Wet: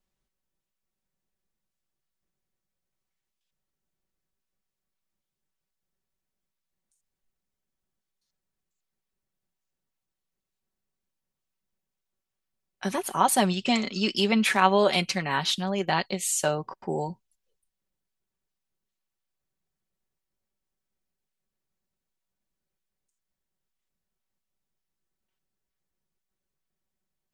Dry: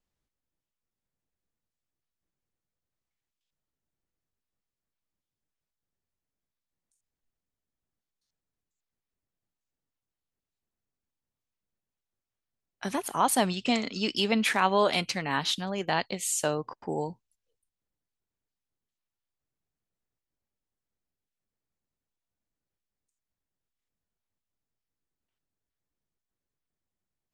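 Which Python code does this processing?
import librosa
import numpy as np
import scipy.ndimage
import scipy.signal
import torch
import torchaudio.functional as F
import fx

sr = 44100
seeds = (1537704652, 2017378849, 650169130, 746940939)

y = x + 0.48 * np.pad(x, (int(5.3 * sr / 1000.0), 0))[:len(x)]
y = F.gain(torch.from_numpy(y), 1.5).numpy()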